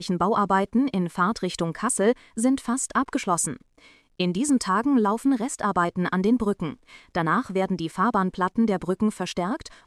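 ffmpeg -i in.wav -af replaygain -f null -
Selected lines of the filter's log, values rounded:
track_gain = +4.8 dB
track_peak = 0.268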